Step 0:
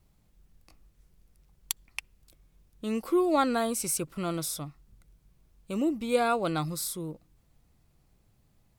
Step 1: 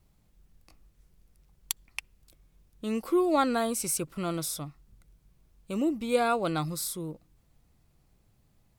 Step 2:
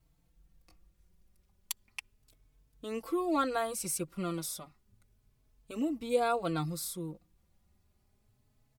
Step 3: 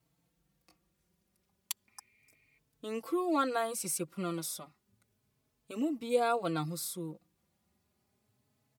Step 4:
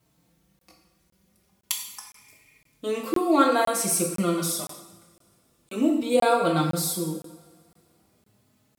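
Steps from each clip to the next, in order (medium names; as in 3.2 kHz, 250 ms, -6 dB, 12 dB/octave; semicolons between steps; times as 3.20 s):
no audible change
endless flanger 4 ms +0.32 Hz; trim -2 dB
spectral replace 1.93–2.56 s, 1.8–4.8 kHz before; high-pass 140 Hz 12 dB/octave
two-slope reverb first 0.82 s, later 2.6 s, from -22 dB, DRR 0.5 dB; crackling interface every 0.51 s, samples 1024, zero, from 0.59 s; trim +8 dB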